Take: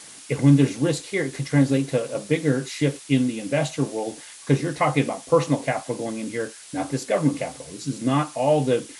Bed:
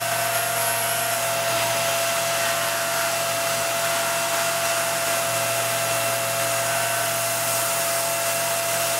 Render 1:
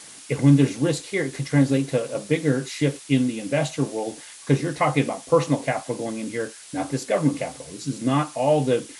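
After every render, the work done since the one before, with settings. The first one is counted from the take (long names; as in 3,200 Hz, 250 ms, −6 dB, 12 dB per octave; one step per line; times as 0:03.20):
no processing that can be heard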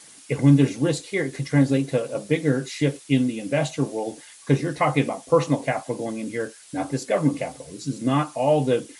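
broadband denoise 6 dB, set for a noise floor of −43 dBFS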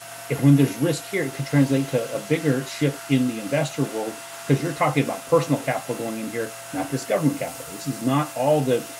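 mix in bed −15 dB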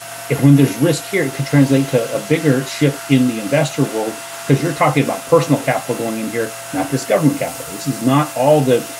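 level +7.5 dB
brickwall limiter −1 dBFS, peak gain reduction 3 dB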